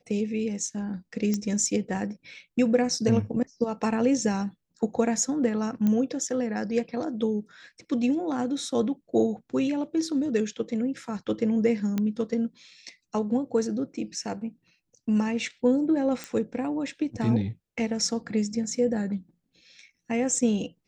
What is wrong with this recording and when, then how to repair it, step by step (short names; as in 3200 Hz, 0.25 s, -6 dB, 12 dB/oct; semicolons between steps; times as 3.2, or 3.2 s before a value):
1.34 pop -15 dBFS
5.87 pop -15 dBFS
11.98 pop -15 dBFS
16.24 pop -17 dBFS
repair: de-click